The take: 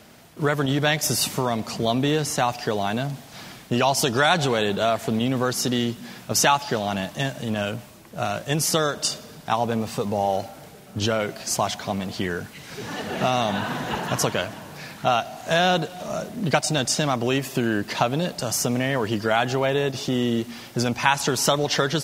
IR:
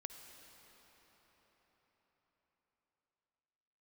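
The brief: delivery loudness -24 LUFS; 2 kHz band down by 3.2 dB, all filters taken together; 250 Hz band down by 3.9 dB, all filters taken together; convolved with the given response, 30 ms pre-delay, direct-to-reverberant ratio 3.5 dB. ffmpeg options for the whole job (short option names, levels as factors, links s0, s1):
-filter_complex "[0:a]equalizer=f=250:t=o:g=-5,equalizer=f=2000:t=o:g=-4.5,asplit=2[s0][s1];[1:a]atrim=start_sample=2205,adelay=30[s2];[s1][s2]afir=irnorm=-1:irlink=0,volume=1.06[s3];[s0][s3]amix=inputs=2:normalize=0,volume=0.944"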